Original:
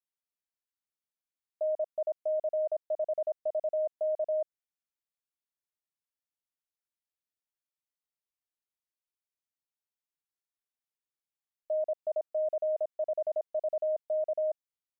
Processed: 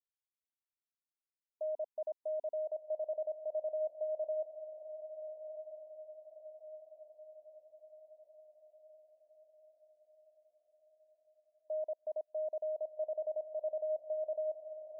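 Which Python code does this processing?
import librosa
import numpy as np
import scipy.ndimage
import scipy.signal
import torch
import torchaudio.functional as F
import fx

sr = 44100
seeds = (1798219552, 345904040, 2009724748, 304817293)

y = fx.echo_diffused(x, sr, ms=1334, feedback_pct=52, wet_db=-10.0)
y = fx.spec_topn(y, sr, count=32)
y = F.gain(torch.from_numpy(y), -7.0).numpy()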